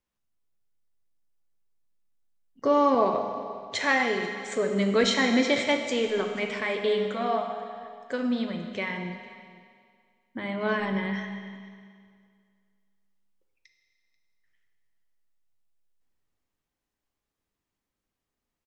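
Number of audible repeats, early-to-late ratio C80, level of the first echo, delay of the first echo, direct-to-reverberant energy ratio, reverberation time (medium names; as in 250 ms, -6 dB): 1, 6.5 dB, -20.5 dB, 487 ms, 4.0 dB, 2.1 s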